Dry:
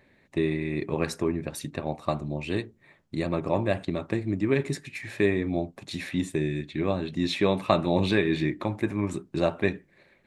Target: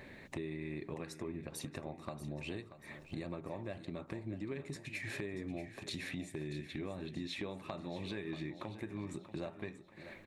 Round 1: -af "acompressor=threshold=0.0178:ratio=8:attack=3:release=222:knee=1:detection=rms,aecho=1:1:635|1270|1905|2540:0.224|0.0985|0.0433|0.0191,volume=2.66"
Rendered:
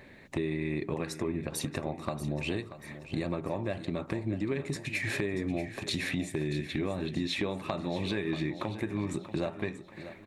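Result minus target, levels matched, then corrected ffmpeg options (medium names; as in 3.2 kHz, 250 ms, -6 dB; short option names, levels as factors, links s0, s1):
compression: peak gain reduction -9.5 dB
-af "acompressor=threshold=0.00501:ratio=8:attack=3:release=222:knee=1:detection=rms,aecho=1:1:635|1270|1905|2540:0.224|0.0985|0.0433|0.0191,volume=2.66"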